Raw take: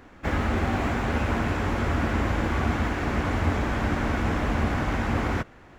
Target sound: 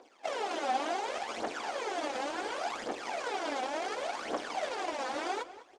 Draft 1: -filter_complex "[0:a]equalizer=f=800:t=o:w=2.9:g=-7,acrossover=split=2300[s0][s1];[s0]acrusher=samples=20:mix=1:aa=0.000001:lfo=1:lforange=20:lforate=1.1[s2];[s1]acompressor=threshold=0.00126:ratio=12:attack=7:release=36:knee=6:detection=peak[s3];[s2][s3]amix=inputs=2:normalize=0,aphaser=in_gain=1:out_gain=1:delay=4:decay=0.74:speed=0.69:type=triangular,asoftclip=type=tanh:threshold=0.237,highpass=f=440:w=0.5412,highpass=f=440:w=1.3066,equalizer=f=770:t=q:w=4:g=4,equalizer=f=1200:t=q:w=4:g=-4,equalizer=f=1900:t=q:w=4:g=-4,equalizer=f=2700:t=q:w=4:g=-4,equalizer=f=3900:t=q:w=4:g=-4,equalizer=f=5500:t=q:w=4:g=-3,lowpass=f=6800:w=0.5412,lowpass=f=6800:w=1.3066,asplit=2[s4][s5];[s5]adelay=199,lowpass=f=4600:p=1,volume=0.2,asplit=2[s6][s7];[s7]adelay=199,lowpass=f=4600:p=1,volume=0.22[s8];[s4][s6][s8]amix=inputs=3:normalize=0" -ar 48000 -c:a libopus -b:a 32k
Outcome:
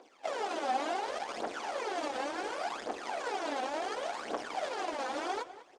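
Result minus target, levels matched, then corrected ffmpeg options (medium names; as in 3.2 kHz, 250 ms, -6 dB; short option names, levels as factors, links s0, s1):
compression: peak gain reduction +13.5 dB; saturation: distortion +12 dB
-filter_complex "[0:a]equalizer=f=800:t=o:w=2.9:g=-7,acrossover=split=2300[s0][s1];[s0]acrusher=samples=20:mix=1:aa=0.000001:lfo=1:lforange=20:lforate=1.1[s2];[s2][s1]amix=inputs=2:normalize=0,aphaser=in_gain=1:out_gain=1:delay=4:decay=0.74:speed=0.69:type=triangular,asoftclip=type=tanh:threshold=0.562,highpass=f=440:w=0.5412,highpass=f=440:w=1.3066,equalizer=f=770:t=q:w=4:g=4,equalizer=f=1200:t=q:w=4:g=-4,equalizer=f=1900:t=q:w=4:g=-4,equalizer=f=2700:t=q:w=4:g=-4,equalizer=f=3900:t=q:w=4:g=-4,equalizer=f=5500:t=q:w=4:g=-3,lowpass=f=6800:w=0.5412,lowpass=f=6800:w=1.3066,asplit=2[s3][s4];[s4]adelay=199,lowpass=f=4600:p=1,volume=0.2,asplit=2[s5][s6];[s6]adelay=199,lowpass=f=4600:p=1,volume=0.22[s7];[s3][s5][s7]amix=inputs=3:normalize=0" -ar 48000 -c:a libopus -b:a 32k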